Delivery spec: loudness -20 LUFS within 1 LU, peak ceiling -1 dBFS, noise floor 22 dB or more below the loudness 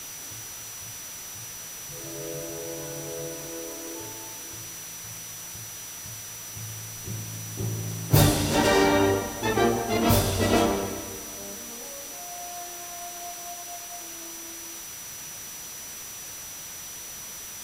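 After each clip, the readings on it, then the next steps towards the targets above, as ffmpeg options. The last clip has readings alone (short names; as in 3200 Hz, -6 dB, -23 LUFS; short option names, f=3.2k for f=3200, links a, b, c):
steady tone 5900 Hz; tone level -40 dBFS; noise floor -39 dBFS; noise floor target -51 dBFS; loudness -29.0 LUFS; peak -6.0 dBFS; loudness target -20.0 LUFS
-> -af "bandreject=f=5.9k:w=30"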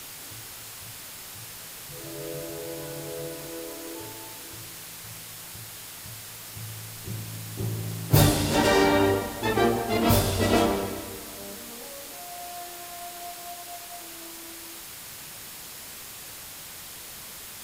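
steady tone none; noise floor -42 dBFS; noise floor target -52 dBFS
-> -af "afftdn=nr=10:nf=-42"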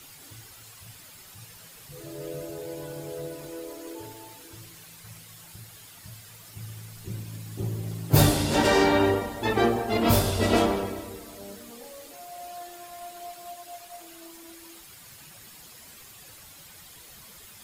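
noise floor -49 dBFS; loudness -25.5 LUFS; peak -5.5 dBFS; loudness target -20.0 LUFS
-> -af "volume=5.5dB,alimiter=limit=-1dB:level=0:latency=1"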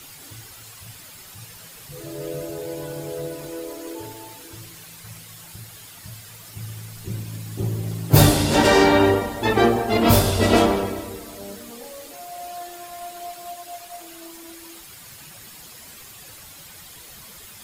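loudness -20.5 LUFS; peak -1.0 dBFS; noise floor -43 dBFS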